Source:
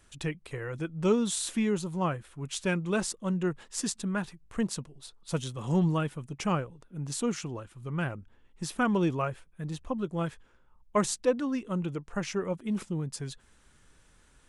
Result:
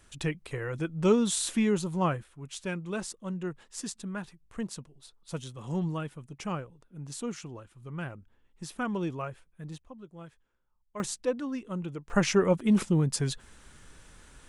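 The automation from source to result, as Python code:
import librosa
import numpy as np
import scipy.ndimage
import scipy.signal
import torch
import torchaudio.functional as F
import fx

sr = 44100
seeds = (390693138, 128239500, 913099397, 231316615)

y = fx.gain(x, sr, db=fx.steps((0.0, 2.0), (2.24, -5.5), (9.78, -15.0), (11.0, -3.5), (12.1, 8.0)))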